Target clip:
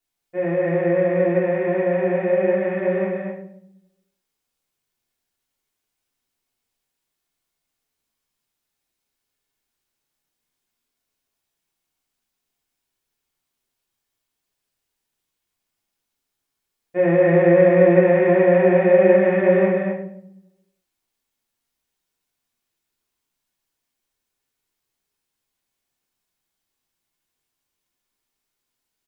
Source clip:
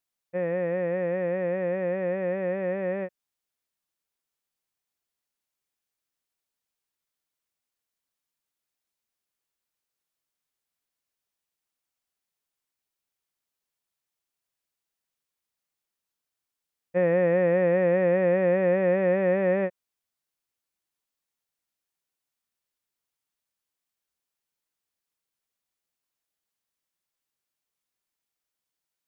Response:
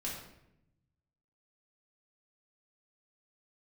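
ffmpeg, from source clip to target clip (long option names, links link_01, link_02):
-filter_complex "[0:a]aecho=1:1:163.3|236.2:0.447|0.501[link_01];[1:a]atrim=start_sample=2205,asetrate=61740,aresample=44100[link_02];[link_01][link_02]afir=irnorm=-1:irlink=0,volume=7.5dB"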